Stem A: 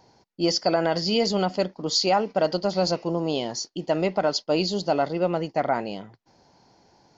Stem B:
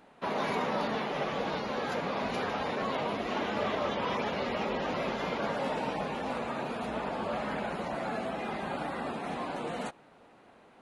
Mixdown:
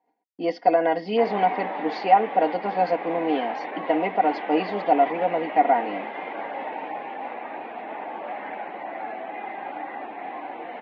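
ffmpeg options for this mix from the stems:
ffmpeg -i stem1.wav -i stem2.wav -filter_complex "[0:a]aecho=1:1:4.2:0.78,volume=-3dB[link_01];[1:a]lowshelf=frequency=490:gain=-7,adelay=950,volume=-0.5dB[link_02];[link_01][link_02]amix=inputs=2:normalize=0,agate=range=-21dB:threshold=-56dB:ratio=16:detection=peak,highpass=300,equalizer=frequency=310:width_type=q:width=4:gain=10,equalizer=frequency=780:width_type=q:width=4:gain=10,equalizer=frequency=1300:width_type=q:width=4:gain=-7,equalizer=frequency=2000:width_type=q:width=4:gain=7,lowpass=frequency=2700:width=0.5412,lowpass=frequency=2700:width=1.3066" out.wav

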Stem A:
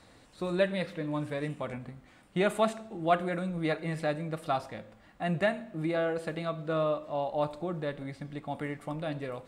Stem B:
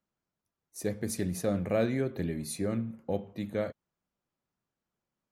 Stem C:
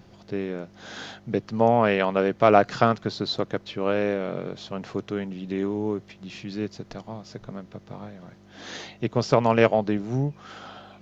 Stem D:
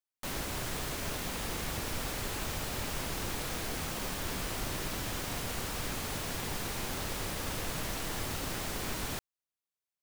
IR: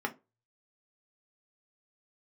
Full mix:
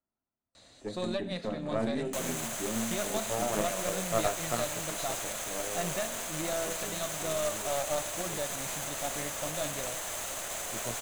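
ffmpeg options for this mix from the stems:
-filter_complex "[0:a]equalizer=frequency=4400:width=1.2:gain=15,alimiter=limit=-22.5dB:level=0:latency=1:release=387,adelay=550,volume=-5.5dB[link_01];[1:a]lowpass=2100,lowshelf=frequency=440:gain=9.5,volume=-12dB,asplit=2[link_02][link_03];[link_03]volume=-6dB[link_04];[2:a]flanger=delay=16:depth=3.8:speed=0.3,adelay=1700,volume=-15.5dB[link_05];[3:a]adelay=1900,volume=2.5dB[link_06];[link_02][link_06]amix=inputs=2:normalize=0,acrossover=split=480|3000[link_07][link_08][link_09];[link_07]acompressor=threshold=-49dB:ratio=6[link_10];[link_10][link_08][link_09]amix=inputs=3:normalize=0,alimiter=level_in=5.5dB:limit=-24dB:level=0:latency=1:release=61,volume=-5.5dB,volume=0dB[link_11];[4:a]atrim=start_sample=2205[link_12];[link_04][link_12]afir=irnorm=-1:irlink=0[link_13];[link_01][link_05][link_11][link_13]amix=inputs=4:normalize=0,superequalizer=8b=2:14b=0.708:15b=2.51:16b=1.58,aeval=exprs='0.224*(cos(1*acos(clip(val(0)/0.224,-1,1)))-cos(1*PI/2))+0.0501*(cos(6*acos(clip(val(0)/0.224,-1,1)))-cos(6*PI/2))+0.0178*(cos(8*acos(clip(val(0)/0.224,-1,1)))-cos(8*PI/2))':channel_layout=same"

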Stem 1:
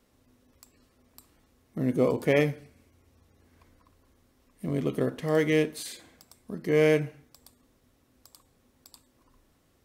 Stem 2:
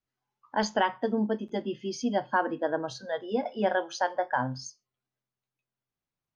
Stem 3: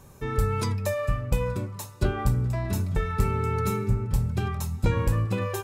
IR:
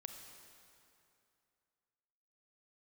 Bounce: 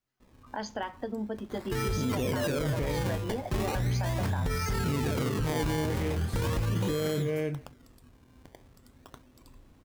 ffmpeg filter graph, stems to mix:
-filter_complex "[0:a]lowshelf=frequency=280:gain=9.5,adelay=200,volume=2dB,asplit=2[link_01][link_02];[link_02]volume=-12dB[link_03];[1:a]acompressor=threshold=-34dB:ratio=6,volume=2.5dB[link_04];[2:a]highshelf=frequency=12000:gain=11,acrusher=bits=7:mix=0:aa=0.000001,adelay=1500,volume=1.5dB,asplit=2[link_05][link_06];[link_06]volume=-19dB[link_07];[link_01][link_05]amix=inputs=2:normalize=0,acrusher=samples=23:mix=1:aa=0.000001:lfo=1:lforange=23:lforate=0.39,alimiter=limit=-20dB:level=0:latency=1:release=23,volume=0dB[link_08];[link_03][link_07]amix=inputs=2:normalize=0,aecho=0:1:318:1[link_09];[link_04][link_08][link_09]amix=inputs=3:normalize=0,alimiter=limit=-22.5dB:level=0:latency=1:release=24"

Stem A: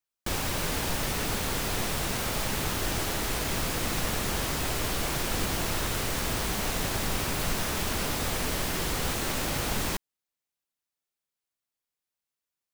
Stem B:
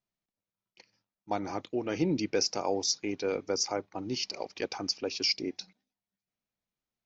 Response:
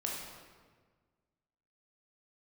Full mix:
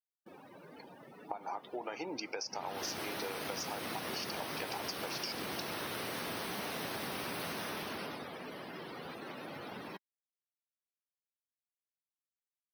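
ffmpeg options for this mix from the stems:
-filter_complex "[0:a]highpass=200,equalizer=frequency=7200:width_type=o:width=0.32:gain=-8.5,volume=-2.5dB,afade=type=in:start_time=2.49:duration=0.42:silence=0.237137,afade=type=out:start_time=7.48:duration=0.8:silence=0.421697[link_01];[1:a]highpass=640,equalizer=frequency=880:width_type=o:width=0.73:gain=9,acompressor=threshold=-34dB:ratio=6,volume=2.5dB[link_02];[link_01][link_02]amix=inputs=2:normalize=0,afftdn=noise_reduction=25:noise_floor=-44,acompressor=threshold=-36dB:ratio=6"

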